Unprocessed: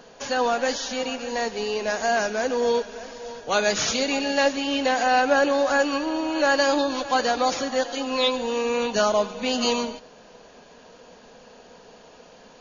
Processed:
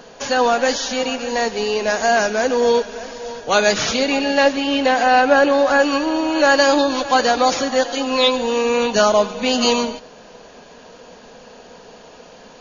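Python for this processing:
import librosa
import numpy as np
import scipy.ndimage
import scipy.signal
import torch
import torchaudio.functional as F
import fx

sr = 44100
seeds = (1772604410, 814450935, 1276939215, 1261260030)

y = fx.air_absorb(x, sr, metres=82.0, at=(3.74, 5.83))
y = F.gain(torch.from_numpy(y), 6.5).numpy()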